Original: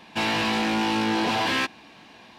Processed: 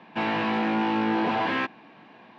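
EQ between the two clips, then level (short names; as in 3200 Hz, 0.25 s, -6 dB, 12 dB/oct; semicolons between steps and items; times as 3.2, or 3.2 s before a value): HPF 120 Hz 24 dB/oct; LPF 2000 Hz 12 dB/oct; 0.0 dB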